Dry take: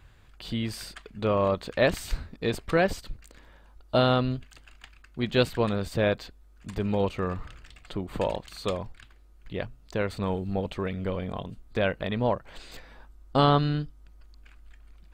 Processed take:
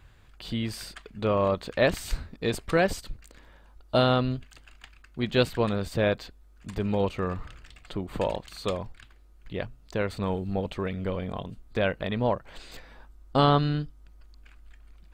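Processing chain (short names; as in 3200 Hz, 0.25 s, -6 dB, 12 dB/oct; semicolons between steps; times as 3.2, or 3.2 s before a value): 2.05–4.04 dynamic EQ 9300 Hz, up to +5 dB, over -50 dBFS, Q 0.72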